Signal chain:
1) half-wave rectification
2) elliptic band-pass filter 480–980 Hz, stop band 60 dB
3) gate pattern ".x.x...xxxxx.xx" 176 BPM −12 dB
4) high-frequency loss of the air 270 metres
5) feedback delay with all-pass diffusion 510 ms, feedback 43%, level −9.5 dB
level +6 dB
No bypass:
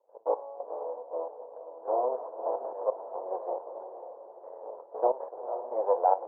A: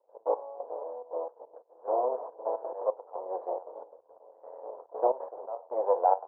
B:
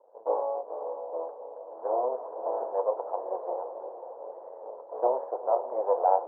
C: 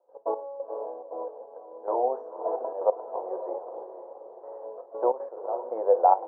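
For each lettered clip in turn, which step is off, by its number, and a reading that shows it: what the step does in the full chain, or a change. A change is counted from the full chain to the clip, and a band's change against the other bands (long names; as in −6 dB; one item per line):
5, echo-to-direct ratio −8.5 dB to none audible
3, change in crest factor −1.5 dB
1, distortion level 0 dB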